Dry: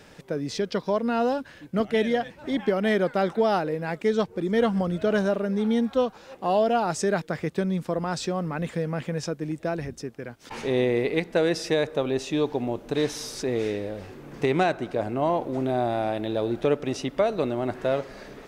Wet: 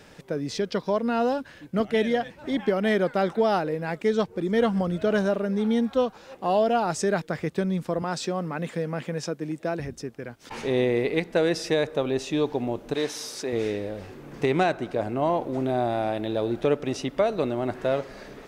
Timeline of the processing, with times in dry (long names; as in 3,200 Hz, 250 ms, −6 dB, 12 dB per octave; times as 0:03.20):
0:08.02–0:09.80: high-pass filter 150 Hz
0:12.94–0:13.53: high-pass filter 360 Hz 6 dB per octave